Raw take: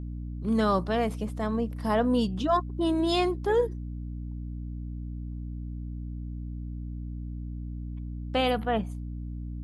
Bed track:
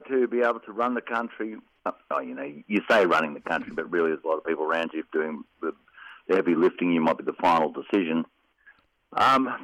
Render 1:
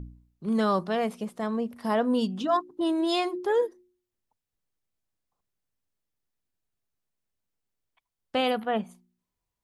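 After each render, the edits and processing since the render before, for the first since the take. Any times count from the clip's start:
hum removal 60 Hz, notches 6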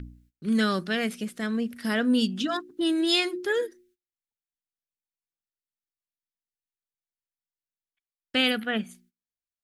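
noise gate −60 dBFS, range −21 dB
drawn EQ curve 180 Hz 0 dB, 260 Hz +4 dB, 1,000 Hz −12 dB, 1,500 Hz +8 dB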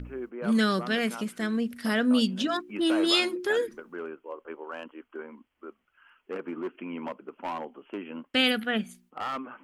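mix in bed track −13.5 dB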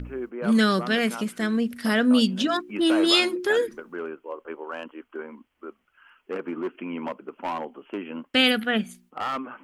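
level +4 dB

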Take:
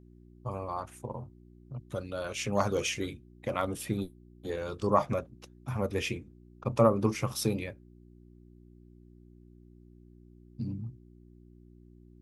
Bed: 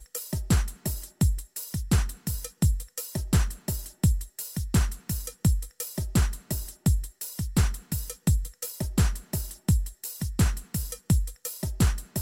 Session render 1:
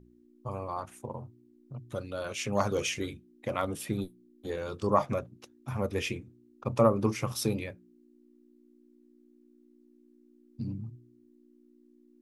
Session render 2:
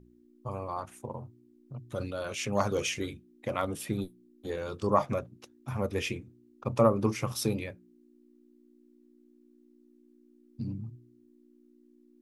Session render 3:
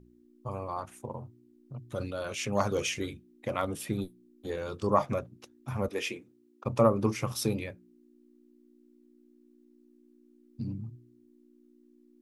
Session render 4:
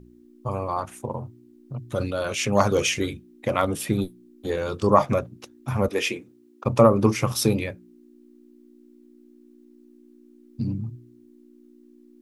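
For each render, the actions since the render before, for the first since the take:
hum removal 60 Hz, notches 3
0:01.94–0:02.45: level that may fall only so fast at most 52 dB per second
0:05.88–0:06.66: high-pass filter 300 Hz
level +8.5 dB; brickwall limiter −3 dBFS, peak gain reduction 2.5 dB

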